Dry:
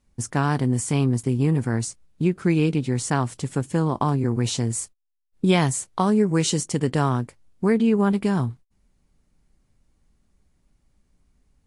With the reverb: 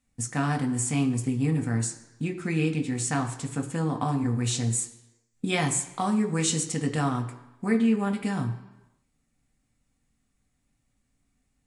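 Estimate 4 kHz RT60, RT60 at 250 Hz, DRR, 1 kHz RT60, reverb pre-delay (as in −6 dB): 1.0 s, 0.95 s, 3.5 dB, 1.0 s, 3 ms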